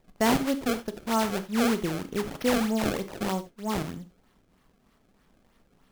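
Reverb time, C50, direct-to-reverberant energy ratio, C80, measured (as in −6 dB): non-exponential decay, 14.0 dB, 10.5 dB, 20.0 dB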